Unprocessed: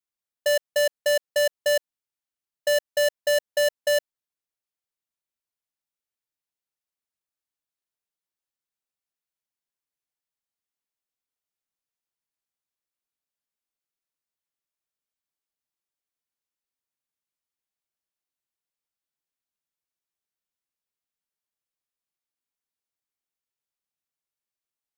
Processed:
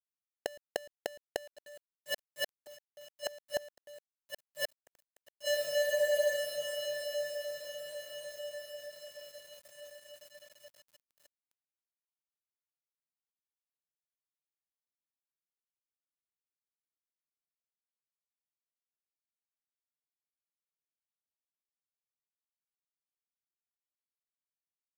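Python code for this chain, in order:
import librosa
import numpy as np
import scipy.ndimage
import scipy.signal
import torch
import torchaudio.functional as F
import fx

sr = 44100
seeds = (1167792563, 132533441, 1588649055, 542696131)

y = fx.halfwave_hold(x, sr)
y = fx.echo_diffused(y, sr, ms=1255, feedback_pct=46, wet_db=-8)
y = fx.gate_flip(y, sr, shuts_db=-27.0, range_db=-36)
y = np.where(np.abs(y) >= 10.0 ** (-57.0 / 20.0), y, 0.0)
y = fx.spec_freeze(y, sr, seeds[0], at_s=5.84, hold_s=0.53)
y = y * 10.0 ** (6.0 / 20.0)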